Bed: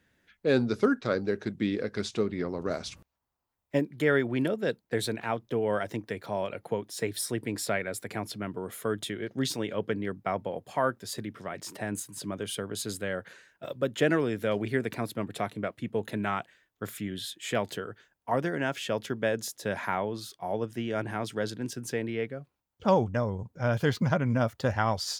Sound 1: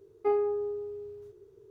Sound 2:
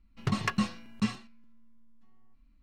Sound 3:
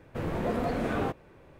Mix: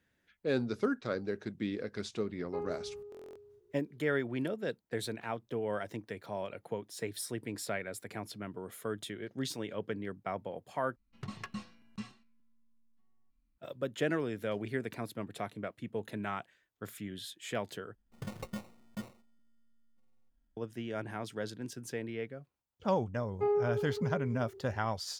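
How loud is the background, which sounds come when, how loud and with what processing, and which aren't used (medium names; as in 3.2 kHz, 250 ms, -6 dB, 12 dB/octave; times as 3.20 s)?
bed -7 dB
2.28 s: add 1 -12 dB + buffer glitch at 0.82 s, samples 1024, times 10
10.96 s: replace with 2 -13.5 dB
17.95 s: replace with 2 -12.5 dB + sample-and-hold 27×
23.16 s: add 1 -4.5 dB + tape echo 68 ms, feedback 83%, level -9.5 dB
not used: 3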